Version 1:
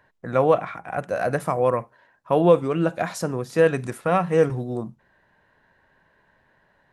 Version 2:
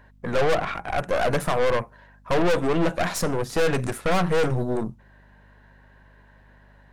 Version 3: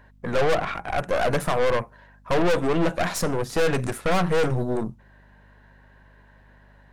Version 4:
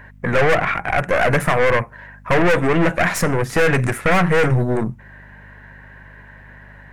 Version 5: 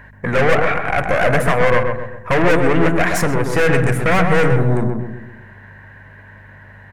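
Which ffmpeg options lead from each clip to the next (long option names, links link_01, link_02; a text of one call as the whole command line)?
ffmpeg -i in.wav -af "aeval=exprs='(tanh(25.1*val(0)+0.75)-tanh(0.75))/25.1':channel_layout=same,aeval=exprs='val(0)+0.000794*(sin(2*PI*50*n/s)+sin(2*PI*2*50*n/s)/2+sin(2*PI*3*50*n/s)/3+sin(2*PI*4*50*n/s)/4+sin(2*PI*5*50*n/s)/5)':channel_layout=same,volume=9dB" out.wav
ffmpeg -i in.wav -af anull out.wav
ffmpeg -i in.wav -filter_complex "[0:a]equalizer=frequency=125:width_type=o:width=1:gain=5,equalizer=frequency=2000:width_type=o:width=1:gain=10,equalizer=frequency=4000:width_type=o:width=1:gain=-6,asplit=2[link_01][link_02];[link_02]acompressor=threshold=-30dB:ratio=6,volume=-1dB[link_03];[link_01][link_03]amix=inputs=2:normalize=0,volume=2.5dB" out.wav
ffmpeg -i in.wav -filter_complex "[0:a]asplit=2[link_01][link_02];[link_02]adelay=129,lowpass=frequency=1200:poles=1,volume=-3dB,asplit=2[link_03][link_04];[link_04]adelay=129,lowpass=frequency=1200:poles=1,volume=0.48,asplit=2[link_05][link_06];[link_06]adelay=129,lowpass=frequency=1200:poles=1,volume=0.48,asplit=2[link_07][link_08];[link_08]adelay=129,lowpass=frequency=1200:poles=1,volume=0.48,asplit=2[link_09][link_10];[link_10]adelay=129,lowpass=frequency=1200:poles=1,volume=0.48,asplit=2[link_11][link_12];[link_12]adelay=129,lowpass=frequency=1200:poles=1,volume=0.48[link_13];[link_01][link_03][link_05][link_07][link_09][link_11][link_13]amix=inputs=7:normalize=0" out.wav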